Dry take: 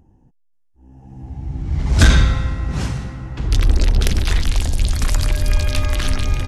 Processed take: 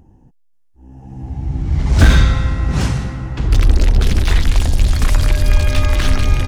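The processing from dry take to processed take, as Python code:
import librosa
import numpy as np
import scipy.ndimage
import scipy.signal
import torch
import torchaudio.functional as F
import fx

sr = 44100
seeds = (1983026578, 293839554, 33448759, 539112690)

p1 = fx.rider(x, sr, range_db=3, speed_s=0.5)
p2 = x + (p1 * 10.0 ** (3.0 / 20.0))
p3 = fx.slew_limit(p2, sr, full_power_hz=590.0)
y = p3 * 10.0 ** (-4.0 / 20.0)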